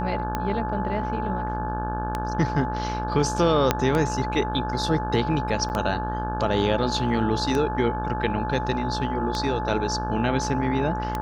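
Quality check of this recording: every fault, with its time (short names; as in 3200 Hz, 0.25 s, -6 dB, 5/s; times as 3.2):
buzz 60 Hz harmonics 29 -30 dBFS
tick 33 1/3 rpm -12 dBFS
tone 860 Hz -29 dBFS
3.71 pop -4 dBFS
5.69–5.7 gap 9.2 ms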